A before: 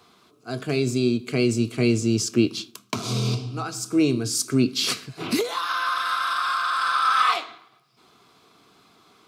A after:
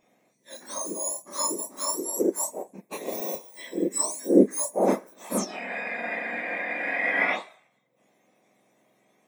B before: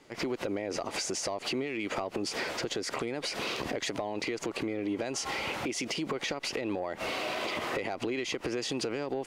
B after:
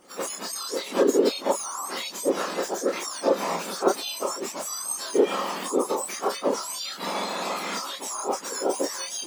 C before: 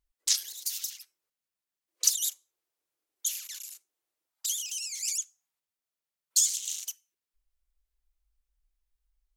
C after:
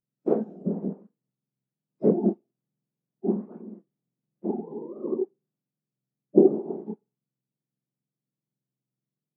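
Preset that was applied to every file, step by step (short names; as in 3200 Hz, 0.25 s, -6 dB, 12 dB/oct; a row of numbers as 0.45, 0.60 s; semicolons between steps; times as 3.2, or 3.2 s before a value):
spectrum mirrored in octaves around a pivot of 1600 Hz; chorus voices 4, 0.95 Hz, delay 29 ms, depth 3 ms; upward expander 1.5:1, over -40 dBFS; match loudness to -27 LUFS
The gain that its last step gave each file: +5.5, +14.5, +4.5 dB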